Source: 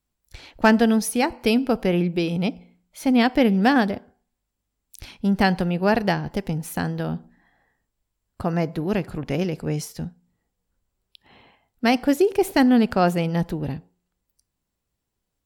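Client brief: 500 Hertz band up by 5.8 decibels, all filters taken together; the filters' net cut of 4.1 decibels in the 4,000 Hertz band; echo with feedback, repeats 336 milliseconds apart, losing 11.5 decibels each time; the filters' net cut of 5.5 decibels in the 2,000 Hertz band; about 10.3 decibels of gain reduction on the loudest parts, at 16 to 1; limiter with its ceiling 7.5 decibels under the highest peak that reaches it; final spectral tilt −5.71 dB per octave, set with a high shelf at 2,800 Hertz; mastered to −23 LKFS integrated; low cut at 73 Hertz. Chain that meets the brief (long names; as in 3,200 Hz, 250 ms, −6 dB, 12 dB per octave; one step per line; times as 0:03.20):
high-pass filter 73 Hz
parametric band 500 Hz +7.5 dB
parametric band 2,000 Hz −8.5 dB
high-shelf EQ 2,800 Hz +7.5 dB
parametric band 4,000 Hz −9 dB
downward compressor 16 to 1, threshold −19 dBFS
brickwall limiter −16 dBFS
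repeating echo 336 ms, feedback 27%, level −11.5 dB
level +4 dB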